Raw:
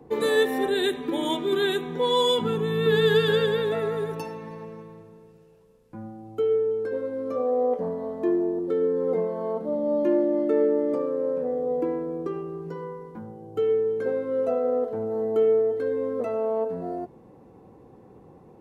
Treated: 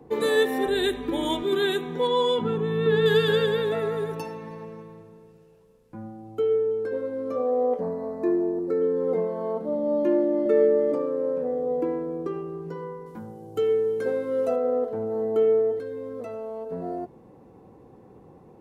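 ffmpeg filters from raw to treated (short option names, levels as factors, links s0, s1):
-filter_complex "[0:a]asettb=1/sr,asplit=3[s0][s1][s2];[s0]atrim=end=0.674[s3];[s1]atrim=start=0.67:end=1.43,asetpts=PTS-STARTPTS,afade=t=in:d=0.004:c=qsin,afade=t=out:st=0.756:d=0.004:c=qsin,aeval=exprs='val(0)+0.00631*(sin(2*PI*50*n/s)+sin(2*PI*2*50*n/s)/2+sin(2*PI*3*50*n/s)/3+sin(2*PI*4*50*n/s)/4+sin(2*PI*5*50*n/s)/5)':c=same[s4];[s2]atrim=start=1.426[s5];[s3][s4]acrossfade=d=0.004:c1=hsin:c2=qsin[s6];[s6][s5]acrossfade=d=0.004:c1=qsin:c2=hsin,asettb=1/sr,asplit=3[s7][s8][s9];[s7]atrim=end=2.074[s10];[s8]atrim=start=2.07:end=3.06,asetpts=PTS-STARTPTS,afade=t=in:d=0.004:c=qsin,afade=t=out:st=0.986:d=0.004:c=qsin,lowpass=f=2100:p=1[s11];[s9]atrim=start=3.056[s12];[s10][s11]acrossfade=d=0.004:c1=hsin:c2=qsin[s13];[s13][s12]acrossfade=d=0.004:c1=qsin:c2=hsin,asettb=1/sr,asplit=3[s14][s15][s16];[s14]atrim=end=7.814[s17];[s15]atrim=start=7.81:end=8.82,asetpts=PTS-STARTPTS,afade=t=in:d=0.004:c=qsin,afade=t=out:st=1.006:d=0.004:c=qsin,asuperstop=centerf=3200:order=20:qfactor=2.8[s18];[s16]atrim=start=8.816[s19];[s17][s18]acrossfade=d=0.004:c1=hsin:c2=qsin[s20];[s20][s19]acrossfade=d=0.004:c1=qsin:c2=hsin,asettb=1/sr,asplit=3[s21][s22][s23];[s21]atrim=end=10.454[s24];[s22]atrim=start=10.45:end=10.92,asetpts=PTS-STARTPTS,afade=t=in:d=0.004:c=qsin,afade=t=out:st=0.466:d=0.004:c=qsin,aecho=1:1:5:0.7,atrim=end_sample=20727[s25];[s23]atrim=start=10.916[s26];[s24][s25]acrossfade=d=0.004:c1=hsin:c2=qsin[s27];[s27][s26]acrossfade=d=0.004:c1=qsin:c2=hsin,asettb=1/sr,asplit=3[s28][s29][s30];[s28]atrim=end=13.064[s31];[s29]atrim=start=13.06:end=14.56,asetpts=PTS-STARTPTS,afade=t=in:d=0.004:c=qsin,afade=t=out:st=1.496:d=0.004:c=qsin,highshelf=f=3600:g=11.5[s32];[s30]atrim=start=14.556[s33];[s31][s32]acrossfade=d=0.004:c1=hsin:c2=qsin[s34];[s34][s33]acrossfade=d=0.004:c1=qsin:c2=hsin,asettb=1/sr,asplit=3[s35][s36][s37];[s35]atrim=end=15.794[s38];[s36]atrim=start=15.79:end=16.72,asetpts=PTS-STARTPTS,afade=t=in:d=0.004:c=qsin,afade=t=out:st=0.926:d=0.004:c=qsin,acrossover=split=150|3000[s39][s40][s41];[s40]acompressor=threshold=0.02:ratio=3:attack=3.2:release=140:knee=2.83:detection=peak[s42];[s39][s42][s41]amix=inputs=3:normalize=0[s43];[s37]atrim=start=16.716[s44];[s38][s43]acrossfade=d=0.004:c1=hsin:c2=qsin[s45];[s45][s44]acrossfade=d=0.004:c1=qsin:c2=hsin"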